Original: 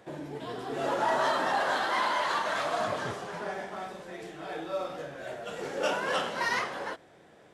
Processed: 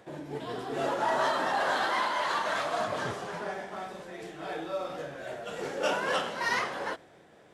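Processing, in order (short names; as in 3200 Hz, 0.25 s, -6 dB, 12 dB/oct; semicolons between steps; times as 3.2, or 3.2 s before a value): noise-modulated level, depth 50%; gain +3 dB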